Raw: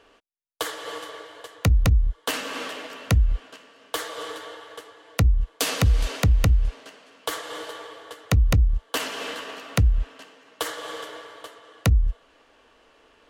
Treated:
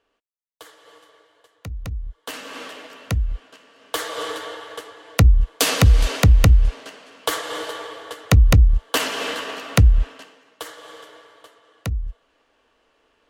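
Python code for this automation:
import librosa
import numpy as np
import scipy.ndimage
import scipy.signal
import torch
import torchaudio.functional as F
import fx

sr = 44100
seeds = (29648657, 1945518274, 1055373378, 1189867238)

y = fx.gain(x, sr, db=fx.line((1.6, -15.0), (2.55, -3.0), (3.5, -3.0), (4.17, 6.0), (10.05, 6.0), (10.67, -6.5)))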